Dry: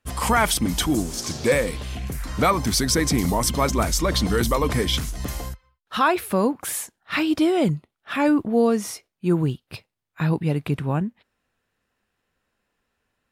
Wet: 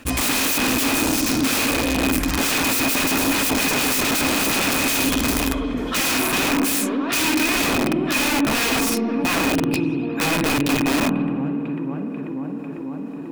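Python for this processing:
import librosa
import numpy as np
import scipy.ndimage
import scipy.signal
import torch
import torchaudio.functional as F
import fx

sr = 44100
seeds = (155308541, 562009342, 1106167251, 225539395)

p1 = 10.0 ** (-20.0 / 20.0) * (np.abs((x / 10.0 ** (-20.0 / 20.0) + 3.0) % 4.0 - 2.0) - 1.0)
p2 = x + (p1 * librosa.db_to_amplitude(-10.5))
p3 = fx.echo_tape(p2, sr, ms=494, feedback_pct=76, wet_db=-14.5, lp_hz=2400.0, drive_db=13.0, wow_cents=38)
p4 = fx.rev_spring(p3, sr, rt60_s=1.7, pass_ms=(49,), chirp_ms=50, drr_db=5.5)
p5 = (np.mod(10.0 ** (20.0 / 20.0) * p4 + 1.0, 2.0) - 1.0) / 10.0 ** (20.0 / 20.0)
p6 = fx.low_shelf(p5, sr, hz=210.0, db=-3.0)
p7 = fx.small_body(p6, sr, hz=(270.0, 2500.0), ring_ms=70, db=16)
y = fx.env_flatten(p7, sr, amount_pct=50)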